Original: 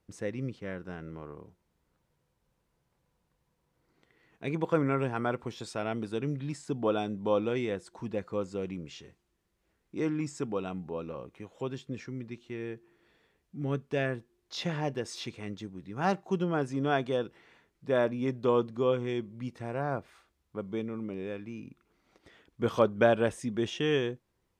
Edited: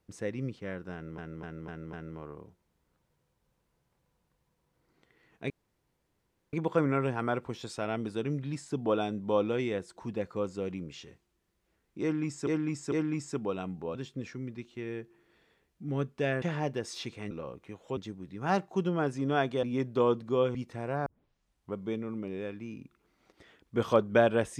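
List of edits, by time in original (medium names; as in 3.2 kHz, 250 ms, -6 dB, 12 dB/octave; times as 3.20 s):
0.93–1.18 s: loop, 5 plays
4.50 s: insert room tone 1.03 s
9.99–10.44 s: loop, 3 plays
11.02–11.68 s: move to 15.52 s
14.15–14.63 s: delete
17.18–18.11 s: delete
19.03–19.41 s: delete
19.92 s: tape start 0.69 s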